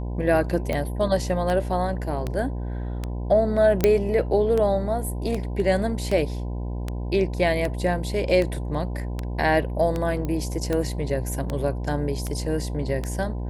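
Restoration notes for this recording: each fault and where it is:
buzz 60 Hz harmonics 17 -29 dBFS
tick 78 rpm -14 dBFS
3.84 pop -5 dBFS
10.25 pop -17 dBFS

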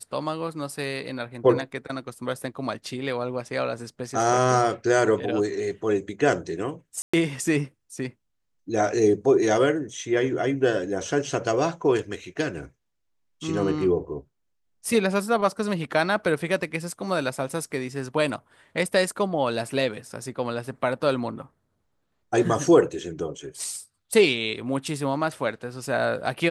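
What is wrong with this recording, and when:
7.02–7.13 gap 0.115 s

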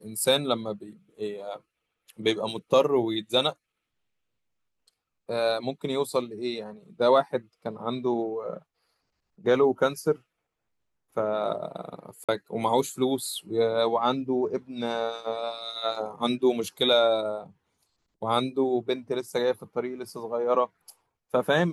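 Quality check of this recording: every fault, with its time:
12.24–12.29 gap 46 ms

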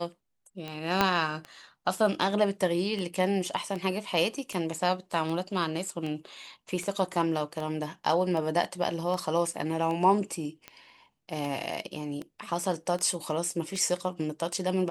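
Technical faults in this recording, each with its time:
tick 78 rpm -23 dBFS
1.01 pop -8 dBFS

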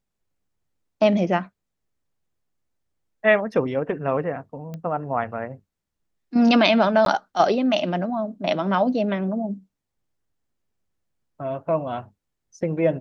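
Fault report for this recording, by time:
4.74 pop -22 dBFS
7.05–7.06 gap 12 ms

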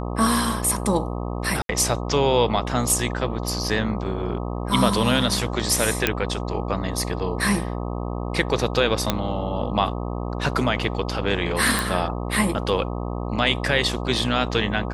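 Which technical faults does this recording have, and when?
buzz 60 Hz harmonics 21 -28 dBFS
1.62–1.69 gap 72 ms
6.07 pop -2 dBFS
9.1 pop -4 dBFS
11.79 pop

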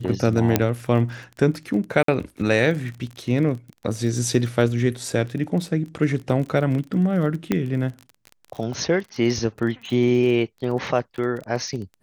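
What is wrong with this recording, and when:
crackle 29/s -30 dBFS
0.56 pop -2 dBFS
2.03–2.08 gap 53 ms
7.52 pop -8 dBFS

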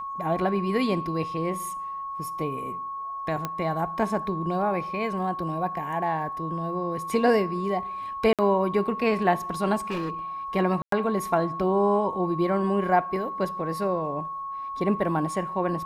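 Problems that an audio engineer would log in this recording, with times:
tone 1100 Hz -31 dBFS
3.45 pop -14 dBFS
8.33–8.39 gap 57 ms
9.78–10.11 clipped -25.5 dBFS
10.82–10.92 gap 0.103 s

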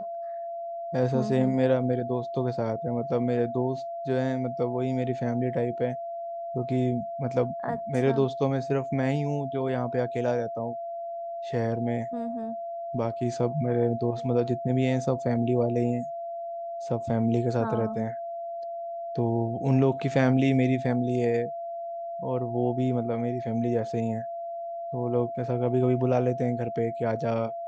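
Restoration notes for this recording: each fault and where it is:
tone 680 Hz -32 dBFS

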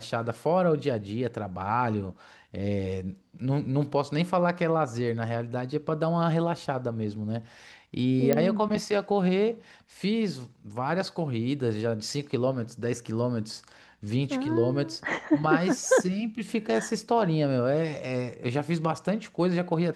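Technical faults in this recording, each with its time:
8.33 pop -10 dBFS

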